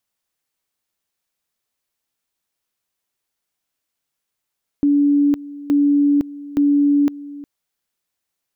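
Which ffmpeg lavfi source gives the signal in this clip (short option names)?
-f lavfi -i "aevalsrc='pow(10,(-11.5-18.5*gte(mod(t,0.87),0.51))/20)*sin(2*PI*287*t)':d=2.61:s=44100"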